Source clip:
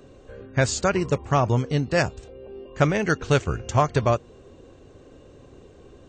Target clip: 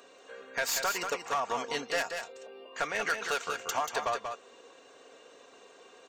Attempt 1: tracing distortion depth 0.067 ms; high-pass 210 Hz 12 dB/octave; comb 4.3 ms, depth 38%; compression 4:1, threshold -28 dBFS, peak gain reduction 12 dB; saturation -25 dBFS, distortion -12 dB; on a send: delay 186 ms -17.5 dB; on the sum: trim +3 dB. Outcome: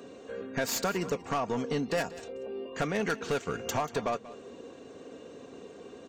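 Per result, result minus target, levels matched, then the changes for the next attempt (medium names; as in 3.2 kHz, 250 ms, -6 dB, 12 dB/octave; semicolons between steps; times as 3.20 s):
250 Hz band +13.0 dB; echo-to-direct -11 dB
change: high-pass 800 Hz 12 dB/octave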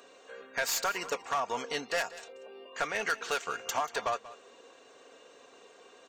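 echo-to-direct -11 dB
change: delay 186 ms -6.5 dB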